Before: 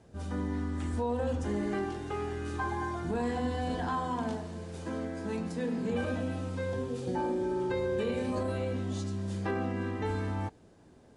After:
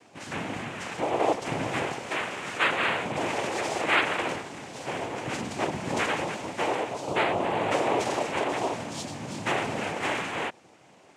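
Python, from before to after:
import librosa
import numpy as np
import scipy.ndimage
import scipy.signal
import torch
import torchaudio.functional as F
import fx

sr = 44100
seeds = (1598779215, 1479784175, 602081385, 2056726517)

p1 = fx.highpass(x, sr, hz=1100.0, slope=6)
p2 = fx.high_shelf(p1, sr, hz=5200.0, db=-6.5)
p3 = p2 + 0.9 * np.pad(p2, (int(5.7 * sr / 1000.0), 0))[:len(p2)]
p4 = fx.rider(p3, sr, range_db=3, speed_s=2.0)
p5 = p3 + (p4 * librosa.db_to_amplitude(1.5))
p6 = fx.noise_vocoder(p5, sr, seeds[0], bands=4)
y = p6 * librosa.db_to_amplitude(3.0)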